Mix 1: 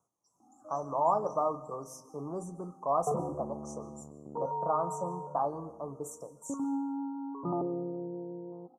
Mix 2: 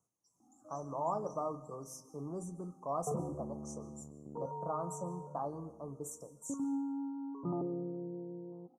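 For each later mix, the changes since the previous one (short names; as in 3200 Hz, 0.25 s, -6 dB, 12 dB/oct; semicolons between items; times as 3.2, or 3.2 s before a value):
master: add bell 910 Hz -9 dB 2.4 oct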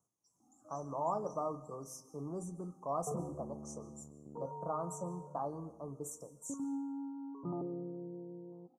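background -3.0 dB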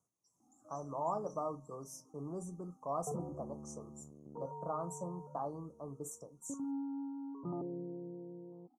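reverb: off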